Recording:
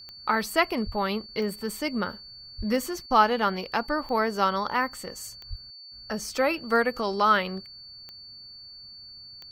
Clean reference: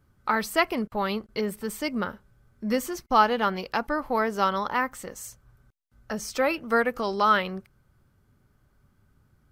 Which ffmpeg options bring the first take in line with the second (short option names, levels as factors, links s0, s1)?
-filter_complex "[0:a]adeclick=t=4,bandreject=f=4500:w=30,asplit=3[s0][s1][s2];[s0]afade=t=out:st=0.85:d=0.02[s3];[s1]highpass=f=140:w=0.5412,highpass=f=140:w=1.3066,afade=t=in:st=0.85:d=0.02,afade=t=out:st=0.97:d=0.02[s4];[s2]afade=t=in:st=0.97:d=0.02[s5];[s3][s4][s5]amix=inputs=3:normalize=0,asplit=3[s6][s7][s8];[s6]afade=t=out:st=2.57:d=0.02[s9];[s7]highpass=f=140:w=0.5412,highpass=f=140:w=1.3066,afade=t=in:st=2.57:d=0.02,afade=t=out:st=2.69:d=0.02[s10];[s8]afade=t=in:st=2.69:d=0.02[s11];[s9][s10][s11]amix=inputs=3:normalize=0,asplit=3[s12][s13][s14];[s12]afade=t=out:st=5.49:d=0.02[s15];[s13]highpass=f=140:w=0.5412,highpass=f=140:w=1.3066,afade=t=in:st=5.49:d=0.02,afade=t=out:st=5.61:d=0.02[s16];[s14]afade=t=in:st=5.61:d=0.02[s17];[s15][s16][s17]amix=inputs=3:normalize=0"